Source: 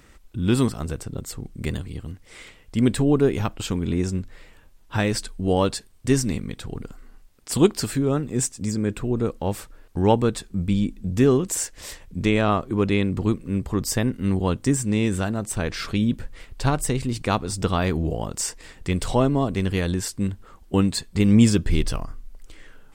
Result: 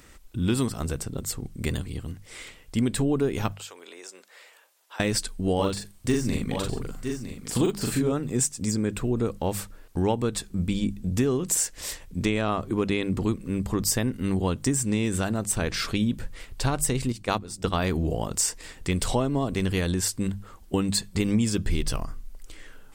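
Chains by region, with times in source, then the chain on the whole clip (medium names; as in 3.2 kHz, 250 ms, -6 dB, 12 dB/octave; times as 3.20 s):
3.52–5.00 s: high-pass 500 Hz 24 dB/octave + compression 2.5:1, threshold -45 dBFS
5.55–8.12 s: de-esser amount 65% + doubling 41 ms -2 dB + delay 959 ms -12.5 dB
17.12–17.82 s: gate -24 dBFS, range -11 dB + hum notches 50/100/150/200/250/300/350 Hz
whole clip: treble shelf 4.6 kHz +6 dB; hum notches 50/100/150/200 Hz; compression 6:1, threshold -20 dBFS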